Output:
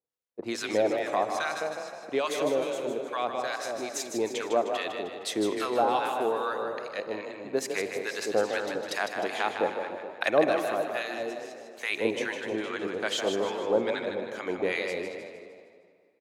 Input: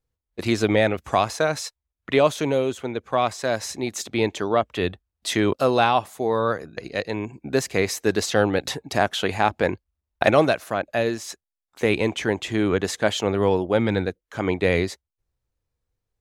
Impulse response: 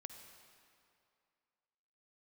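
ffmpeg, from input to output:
-filter_complex "[0:a]asplit=2[link_01][link_02];[link_02]adelay=210,lowpass=frequency=2200:poles=1,volume=-6.5dB,asplit=2[link_03][link_04];[link_04]adelay=210,lowpass=frequency=2200:poles=1,volume=0.42,asplit=2[link_05][link_06];[link_06]adelay=210,lowpass=frequency=2200:poles=1,volume=0.42,asplit=2[link_07][link_08];[link_08]adelay=210,lowpass=frequency=2200:poles=1,volume=0.42,asplit=2[link_09][link_10];[link_10]adelay=210,lowpass=frequency=2200:poles=1,volume=0.42[link_11];[link_03][link_05][link_07][link_09][link_11]amix=inputs=5:normalize=0[link_12];[link_01][link_12]amix=inputs=2:normalize=0,acrossover=split=990[link_13][link_14];[link_13]aeval=exprs='val(0)*(1-1/2+1/2*cos(2*PI*2.4*n/s))':channel_layout=same[link_15];[link_14]aeval=exprs='val(0)*(1-1/2-1/2*cos(2*PI*2.4*n/s))':channel_layout=same[link_16];[link_15][link_16]amix=inputs=2:normalize=0,highpass=380,asplit=7[link_17][link_18][link_19][link_20][link_21][link_22][link_23];[link_18]adelay=154,afreqshift=30,volume=-7dB[link_24];[link_19]adelay=308,afreqshift=60,volume=-13.6dB[link_25];[link_20]adelay=462,afreqshift=90,volume=-20.1dB[link_26];[link_21]adelay=616,afreqshift=120,volume=-26.7dB[link_27];[link_22]adelay=770,afreqshift=150,volume=-33.2dB[link_28];[link_23]adelay=924,afreqshift=180,volume=-39.8dB[link_29];[link_17][link_24][link_25][link_26][link_27][link_28][link_29]amix=inputs=7:normalize=0,asplit=2[link_30][link_31];[1:a]atrim=start_sample=2205,lowshelf=frequency=330:gain=9[link_32];[link_31][link_32]afir=irnorm=-1:irlink=0,volume=1dB[link_33];[link_30][link_33]amix=inputs=2:normalize=0,volume=-6.5dB"

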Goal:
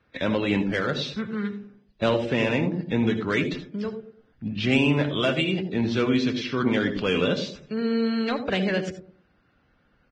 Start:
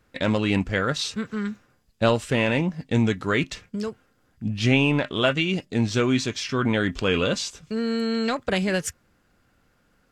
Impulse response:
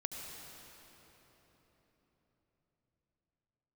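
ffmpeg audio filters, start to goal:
-filter_complex "[0:a]lowpass=frequency=4200:width=0.5412,lowpass=frequency=4200:width=1.3066,acrossover=split=140|570|2800[link_01][link_02][link_03][link_04];[link_01]acompressor=threshold=-40dB:ratio=6[link_05];[link_02]aecho=1:1:105|210|315|420:0.668|0.201|0.0602|0.018[link_06];[link_03]asoftclip=type=tanh:threshold=-21.5dB[link_07];[link_05][link_06][link_07][link_04]amix=inputs=4:normalize=0[link_08];[1:a]atrim=start_sample=2205,atrim=end_sample=3969[link_09];[link_08][link_09]afir=irnorm=-1:irlink=0,volume=1.5dB" -ar 22050 -c:a libvorbis -b:a 16k

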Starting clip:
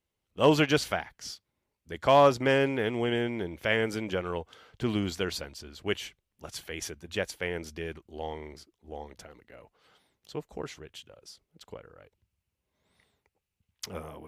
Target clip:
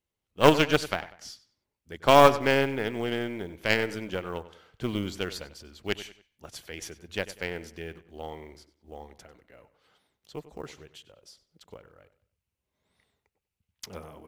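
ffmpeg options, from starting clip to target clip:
ffmpeg -i in.wav -filter_complex "[0:a]acrusher=bits=8:mode=log:mix=0:aa=0.000001,aeval=exprs='0.335*(cos(1*acos(clip(val(0)/0.335,-1,1)))-cos(1*PI/2))+0.075*(cos(3*acos(clip(val(0)/0.335,-1,1)))-cos(3*PI/2))+0.0119*(cos(4*acos(clip(val(0)/0.335,-1,1)))-cos(4*PI/2))':channel_layout=same,asplit=2[link_01][link_02];[link_02]adelay=96,lowpass=frequency=4600:poles=1,volume=-15dB,asplit=2[link_03][link_04];[link_04]adelay=96,lowpass=frequency=4600:poles=1,volume=0.36,asplit=2[link_05][link_06];[link_06]adelay=96,lowpass=frequency=4600:poles=1,volume=0.36[link_07];[link_01][link_03][link_05][link_07]amix=inputs=4:normalize=0,volume=6.5dB" out.wav

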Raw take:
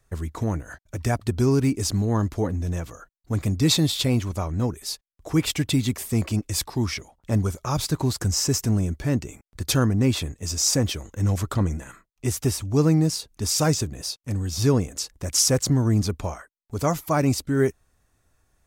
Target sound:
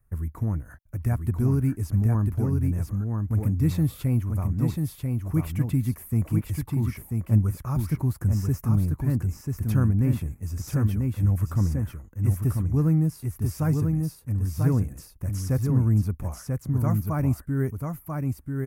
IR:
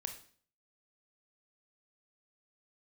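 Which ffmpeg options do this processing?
-filter_complex "[0:a]acrossover=split=6200[link_01][link_02];[link_02]acompressor=threshold=-37dB:ratio=4:attack=1:release=60[link_03];[link_01][link_03]amix=inputs=2:normalize=0,firequalizer=gain_entry='entry(120,0);entry(400,-12);entry(710,-12);entry(1100,-9);entry(2200,-13);entry(3600,-26);entry(7600,-17);entry(11000,-1)':delay=0.05:min_phase=1,aecho=1:1:990:0.631,volume=1dB"

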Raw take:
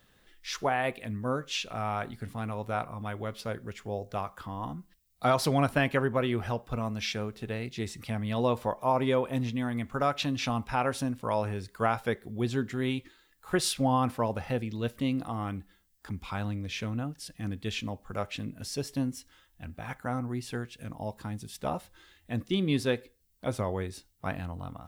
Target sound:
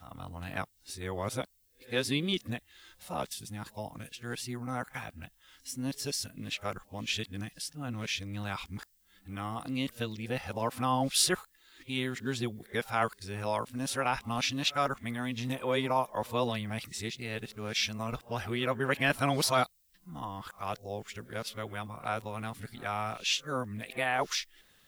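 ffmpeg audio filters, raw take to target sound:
ffmpeg -i in.wav -af "areverse,tiltshelf=frequency=1400:gain=-5" out.wav

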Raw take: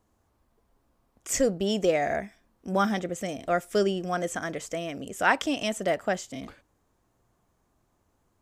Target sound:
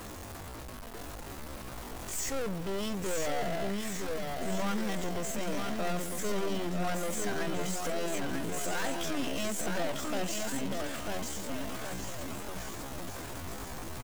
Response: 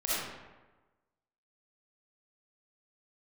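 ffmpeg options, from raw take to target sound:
-filter_complex "[0:a]aeval=exprs='val(0)+0.5*0.0224*sgn(val(0))':channel_layout=same,aeval=exprs='(tanh(44.7*val(0)+0.7)-tanh(0.7))/44.7':channel_layout=same,asplit=2[link_01][link_02];[link_02]aecho=0:1:570|1026|1391|1683|1916:0.631|0.398|0.251|0.158|0.1[link_03];[link_01][link_03]amix=inputs=2:normalize=0,atempo=0.6"

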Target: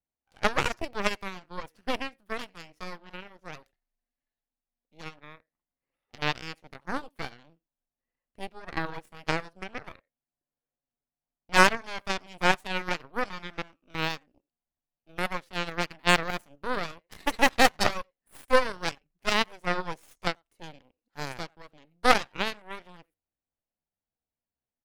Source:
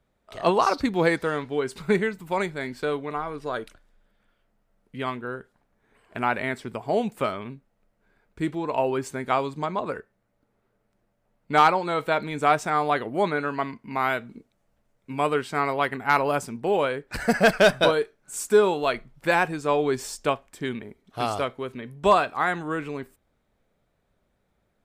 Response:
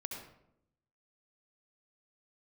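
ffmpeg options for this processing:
-filter_complex "[0:a]asplit=2[link_01][link_02];[link_02]adelay=90,highpass=300,lowpass=3400,asoftclip=type=hard:threshold=-16.5dB,volume=-19dB[link_03];[link_01][link_03]amix=inputs=2:normalize=0,asetrate=53981,aresample=44100,atempo=0.816958,aeval=exprs='0.447*(cos(1*acos(clip(val(0)/0.447,-1,1)))-cos(1*PI/2))+0.158*(cos(2*acos(clip(val(0)/0.447,-1,1)))-cos(2*PI/2))+0.141*(cos(3*acos(clip(val(0)/0.447,-1,1)))-cos(3*PI/2))+0.0178*(cos(6*acos(clip(val(0)/0.447,-1,1)))-cos(6*PI/2))':channel_layout=same"

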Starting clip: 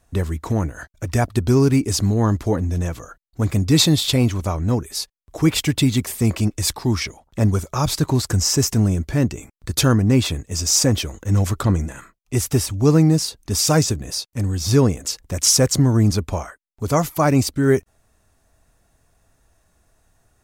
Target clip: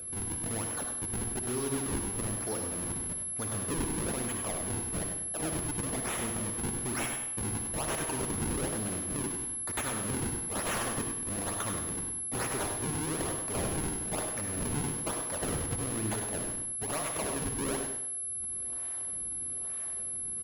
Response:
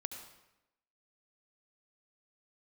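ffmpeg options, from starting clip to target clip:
-filter_complex "[0:a]highpass=frequency=980:poles=1,asplit=2[link_01][link_02];[link_02]acompressor=mode=upward:threshold=-25dB:ratio=2.5,volume=-2dB[link_03];[link_01][link_03]amix=inputs=2:normalize=0,acrusher=samples=42:mix=1:aa=0.000001:lfo=1:lforange=67.2:lforate=1.1,acompressor=threshold=-20dB:ratio=6,aeval=exprs='val(0)+0.0316*sin(2*PI*11000*n/s)':channel_layout=same,asoftclip=type=tanh:threshold=-19dB,aecho=1:1:99|198|297:0.422|0.118|0.0331[link_04];[1:a]atrim=start_sample=2205,asetrate=57330,aresample=44100[link_05];[link_04][link_05]afir=irnorm=-1:irlink=0,volume=-4dB"

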